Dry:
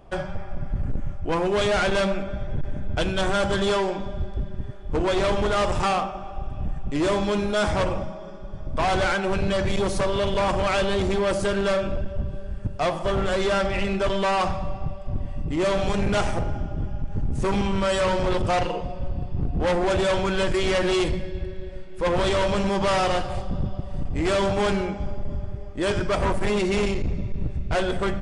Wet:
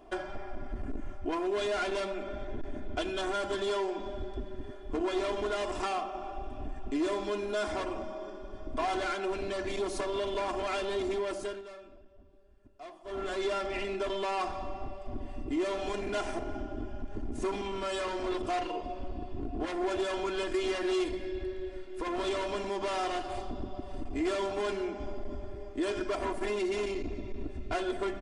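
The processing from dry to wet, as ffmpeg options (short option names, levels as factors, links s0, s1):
-filter_complex "[0:a]asplit=3[s0][s1][s2];[s0]atrim=end=11.62,asetpts=PTS-STARTPTS,afade=t=out:st=11.14:d=0.48:silence=0.0841395[s3];[s1]atrim=start=11.62:end=13.04,asetpts=PTS-STARTPTS,volume=0.0841[s4];[s2]atrim=start=13.04,asetpts=PTS-STARTPTS,afade=t=in:d=0.48:silence=0.0841395[s5];[s3][s4][s5]concat=n=3:v=0:a=1,lowshelf=f=170:t=q:w=1.5:g=-9.5,acompressor=threshold=0.0316:ratio=3,aecho=1:1:2.9:0.8,volume=0.596"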